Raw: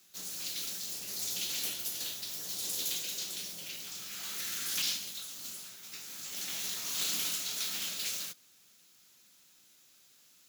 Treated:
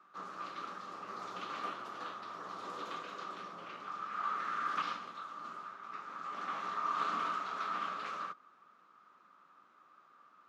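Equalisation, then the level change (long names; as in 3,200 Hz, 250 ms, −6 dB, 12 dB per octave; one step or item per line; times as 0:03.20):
high-pass filter 220 Hz 12 dB per octave
low-pass with resonance 1,200 Hz, resonance Q 13
+3.5 dB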